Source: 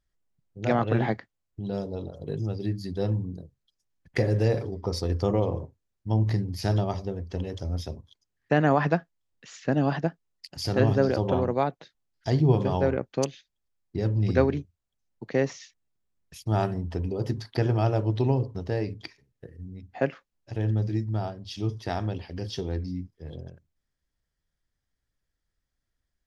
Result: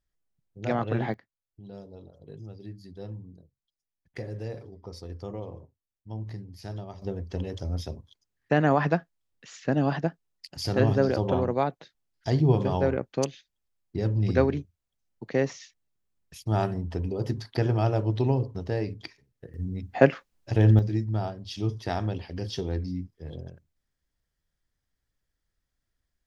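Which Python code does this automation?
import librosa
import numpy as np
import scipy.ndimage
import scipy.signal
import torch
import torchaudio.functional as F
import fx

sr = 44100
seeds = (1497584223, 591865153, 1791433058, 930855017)

y = fx.gain(x, sr, db=fx.steps((0.0, -3.5), (1.14, -12.5), (7.02, -0.5), (19.54, 8.0), (20.79, 0.5)))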